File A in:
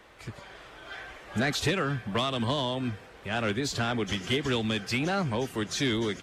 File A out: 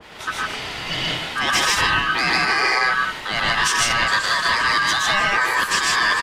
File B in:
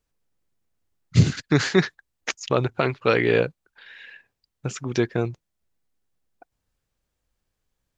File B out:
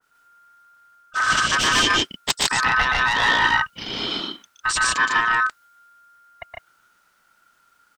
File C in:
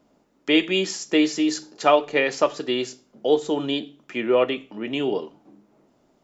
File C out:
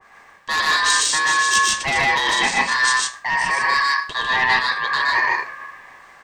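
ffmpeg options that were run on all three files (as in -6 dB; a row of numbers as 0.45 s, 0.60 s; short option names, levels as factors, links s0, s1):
-filter_complex "[0:a]asplit=2[s0][s1];[s1]aeval=exprs='0.668*sin(PI/2*3.55*val(0)/0.668)':c=same,volume=0.398[s2];[s0][s2]amix=inputs=2:normalize=0,acontrast=34,aeval=exprs='val(0)*sin(2*PI*1400*n/s)':c=same,areverse,acompressor=threshold=0.1:ratio=12,areverse,aecho=1:1:119.5|151.6:0.708|0.891,adynamicequalizer=threshold=0.0178:dfrequency=1600:dqfactor=0.7:tfrequency=1600:tqfactor=0.7:attack=5:release=100:ratio=0.375:range=2:mode=boostabove:tftype=highshelf"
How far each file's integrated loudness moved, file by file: +11.0 LU, +4.0 LU, +5.5 LU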